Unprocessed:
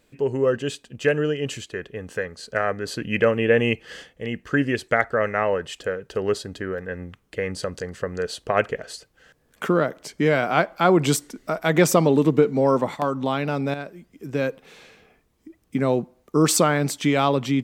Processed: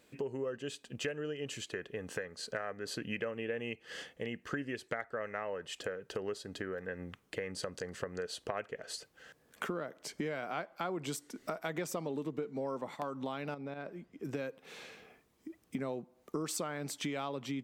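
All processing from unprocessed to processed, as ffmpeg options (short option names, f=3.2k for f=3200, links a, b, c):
-filter_complex "[0:a]asettb=1/sr,asplit=3[a][b][c];[a]atrim=end=13.544[d];[b]atrim=start=13.54:end=14.25,asetpts=PTS-STARTPTS,afade=t=in:d=0.004:c=qsin,afade=t=out:st=0.706:d=0.004:c=qsin,acompressor=threshold=-31dB:ratio=3:attack=3.2:release=140:knee=1:detection=peak,lowpass=f=2.2k:p=1[e];[c]atrim=start=14.246[f];[d][e]acrossfade=d=0.004:c1=hsin:c2=qsin[g];[g][f]acrossfade=d=0.004:c1=qsin:c2=hsin,highpass=f=170:p=1,acompressor=threshold=-35dB:ratio=5,volume=-1.5dB"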